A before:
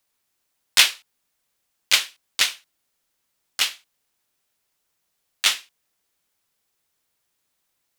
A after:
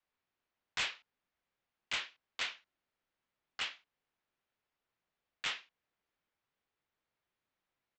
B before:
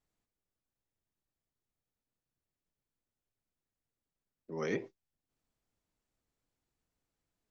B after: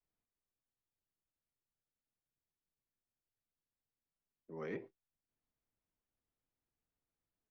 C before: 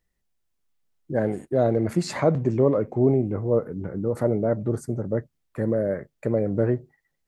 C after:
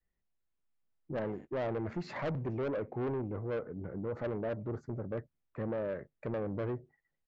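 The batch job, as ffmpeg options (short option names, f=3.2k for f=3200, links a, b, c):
-af "lowpass=2.6k,adynamicequalizer=threshold=0.0224:dfrequency=170:dqfactor=0.81:tfrequency=170:tqfactor=0.81:attack=5:release=100:ratio=0.375:range=2.5:mode=cutabove:tftype=bell,aresample=16000,asoftclip=type=tanh:threshold=-23.5dB,aresample=44100,volume=-7dB"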